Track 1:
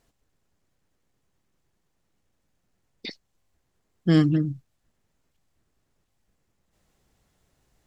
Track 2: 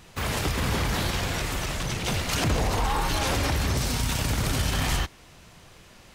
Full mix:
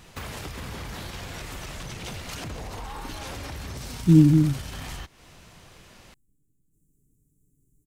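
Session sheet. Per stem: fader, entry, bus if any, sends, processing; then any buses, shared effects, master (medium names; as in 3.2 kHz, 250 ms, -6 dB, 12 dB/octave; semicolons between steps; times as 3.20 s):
+2.0 dB, 0.00 s, no send, inverse Chebyshev band-stop 640–4600 Hz, stop band 40 dB; comb 7 ms, depth 53%
0.0 dB, 0.00 s, no send, compression 6:1, threshold -34 dBFS, peak gain reduction 12.5 dB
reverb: none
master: none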